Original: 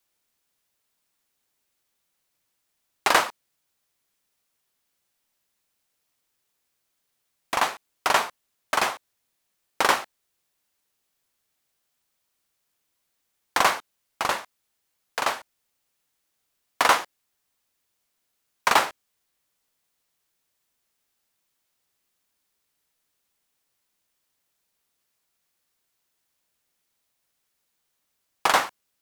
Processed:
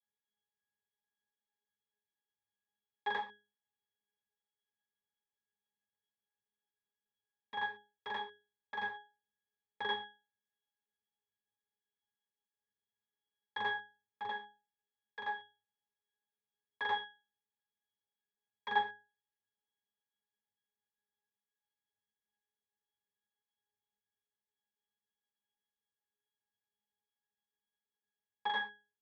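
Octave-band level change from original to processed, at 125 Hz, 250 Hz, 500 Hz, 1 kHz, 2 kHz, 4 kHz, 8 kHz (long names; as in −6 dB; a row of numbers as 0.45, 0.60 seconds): −17.0 dB, −19.0 dB, −18.5 dB, −14.5 dB, −12.5 dB, −15.0 dB, below −40 dB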